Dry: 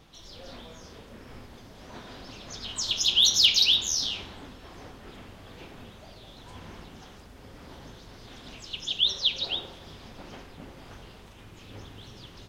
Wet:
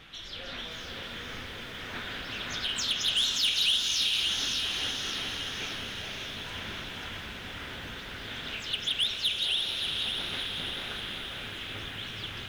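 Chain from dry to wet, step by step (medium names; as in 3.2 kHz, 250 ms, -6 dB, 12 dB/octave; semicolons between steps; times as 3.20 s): high-order bell 2.2 kHz +12 dB; compression 2.5:1, threshold -29 dBFS, peak gain reduction 16.5 dB; saturation -21 dBFS, distortion -13 dB; echo that smears into a reverb 473 ms, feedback 56%, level -4 dB; bit-crushed delay 575 ms, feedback 55%, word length 9-bit, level -6.5 dB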